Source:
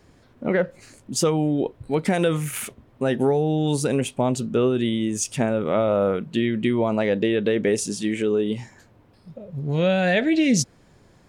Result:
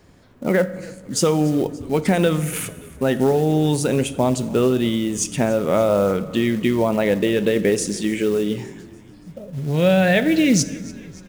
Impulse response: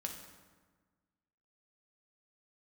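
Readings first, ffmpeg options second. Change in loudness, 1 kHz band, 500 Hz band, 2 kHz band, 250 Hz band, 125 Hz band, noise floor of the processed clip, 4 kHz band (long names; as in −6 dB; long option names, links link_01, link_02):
+3.0 dB, +3.0 dB, +3.0 dB, +3.0 dB, +3.0 dB, +3.5 dB, −45 dBFS, +3.0 dB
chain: -filter_complex "[0:a]acrusher=bits=6:mode=log:mix=0:aa=0.000001,asplit=6[link_01][link_02][link_03][link_04][link_05][link_06];[link_02]adelay=288,afreqshift=-42,volume=-21dB[link_07];[link_03]adelay=576,afreqshift=-84,volume=-25.6dB[link_08];[link_04]adelay=864,afreqshift=-126,volume=-30.2dB[link_09];[link_05]adelay=1152,afreqshift=-168,volume=-34.7dB[link_10];[link_06]adelay=1440,afreqshift=-210,volume=-39.3dB[link_11];[link_01][link_07][link_08][link_09][link_10][link_11]amix=inputs=6:normalize=0,asplit=2[link_12][link_13];[1:a]atrim=start_sample=2205[link_14];[link_13][link_14]afir=irnorm=-1:irlink=0,volume=-6dB[link_15];[link_12][link_15]amix=inputs=2:normalize=0"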